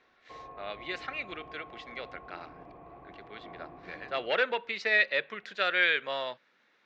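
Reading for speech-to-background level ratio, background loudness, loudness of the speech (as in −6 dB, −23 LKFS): 20.0 dB, −49.5 LKFS, −29.5 LKFS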